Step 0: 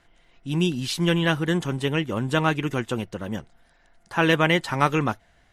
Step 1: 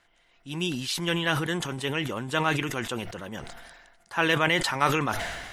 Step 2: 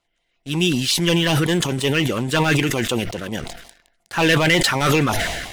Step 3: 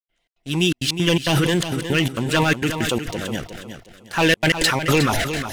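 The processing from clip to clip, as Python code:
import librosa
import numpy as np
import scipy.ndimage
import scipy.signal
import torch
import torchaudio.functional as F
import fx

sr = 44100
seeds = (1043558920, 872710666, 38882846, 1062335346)

y1 = fx.low_shelf(x, sr, hz=420.0, db=-10.5)
y1 = fx.sustainer(y1, sr, db_per_s=39.0)
y1 = y1 * 10.0 ** (-1.5 / 20.0)
y2 = fx.leveller(y1, sr, passes=3)
y2 = fx.filter_lfo_notch(y2, sr, shape='saw_down', hz=5.5, low_hz=740.0, high_hz=1800.0, q=1.3)
y3 = fx.step_gate(y2, sr, bpm=166, pattern='.xx.xxxx.x', floor_db=-60.0, edge_ms=4.5)
y3 = fx.echo_feedback(y3, sr, ms=362, feedback_pct=30, wet_db=-9.5)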